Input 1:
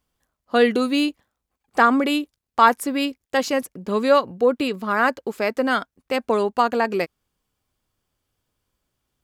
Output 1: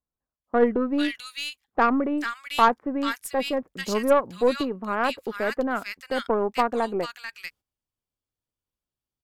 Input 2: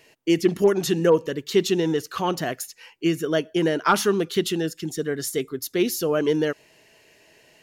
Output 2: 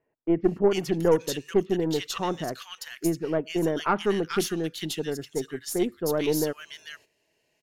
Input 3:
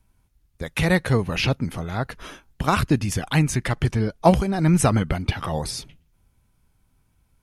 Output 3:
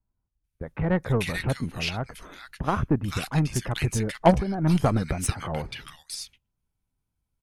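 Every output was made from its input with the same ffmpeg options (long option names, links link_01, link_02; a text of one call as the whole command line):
ffmpeg -i in.wav -filter_complex "[0:a]acrossover=split=1600[link_01][link_02];[link_02]adelay=440[link_03];[link_01][link_03]amix=inputs=2:normalize=0,aeval=exprs='0.708*(cos(1*acos(clip(val(0)/0.708,-1,1)))-cos(1*PI/2))+0.0891*(cos(3*acos(clip(val(0)/0.708,-1,1)))-cos(3*PI/2))+0.0251*(cos(6*acos(clip(val(0)/0.708,-1,1)))-cos(6*PI/2))':channel_layout=same,agate=range=-12dB:threshold=-51dB:ratio=16:detection=peak" out.wav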